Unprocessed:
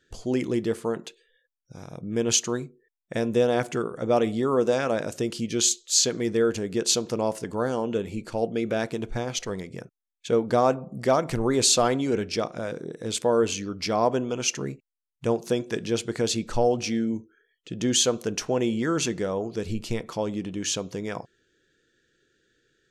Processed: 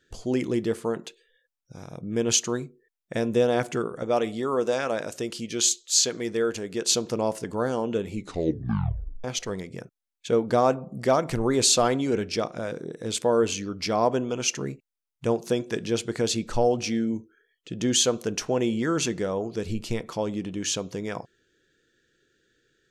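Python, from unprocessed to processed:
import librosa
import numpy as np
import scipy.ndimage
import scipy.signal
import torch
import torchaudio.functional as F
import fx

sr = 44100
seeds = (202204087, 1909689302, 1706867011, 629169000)

y = fx.low_shelf(x, sr, hz=330.0, db=-7.5, at=(4.03, 6.91))
y = fx.edit(y, sr, fx.tape_stop(start_s=8.15, length_s=1.09), tone=tone)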